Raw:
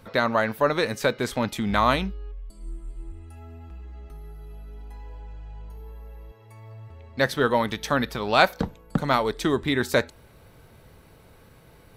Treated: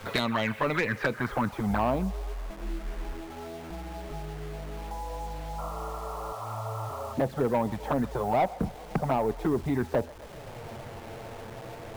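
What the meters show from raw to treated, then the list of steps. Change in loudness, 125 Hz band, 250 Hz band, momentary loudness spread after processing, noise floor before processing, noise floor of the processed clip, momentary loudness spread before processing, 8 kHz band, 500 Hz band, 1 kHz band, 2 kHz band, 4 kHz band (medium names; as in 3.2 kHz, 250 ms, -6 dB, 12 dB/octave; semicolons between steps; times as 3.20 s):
-7.0 dB, -1.0 dB, -2.5 dB, 15 LU, -53 dBFS, -43 dBFS, 22 LU, -7.5 dB, -4.5 dB, -4.5 dB, -7.0 dB, -9.5 dB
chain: level-controlled noise filter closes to 2 kHz; treble shelf 2.9 kHz +11 dB; low-pass sweep 3.9 kHz -> 750 Hz, 0.12–1.85 s; in parallel at +2 dB: compression 5:1, threshold -28 dBFS, peak gain reduction 17.5 dB; on the sum: touch-sensitive flanger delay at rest 10.2 ms, full sweep at -12 dBFS; dynamic bell 570 Hz, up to -5 dB, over -32 dBFS, Q 1.6; saturation -16 dBFS, distortion -13 dB; painted sound noise, 5.58–7.14 s, 550–1400 Hz -41 dBFS; bit crusher 8-bit; on a send: feedback echo behind a band-pass 130 ms, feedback 63%, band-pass 1.1 kHz, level -19.5 dB; on the sum: three bands compressed up and down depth 40%; trim -2 dB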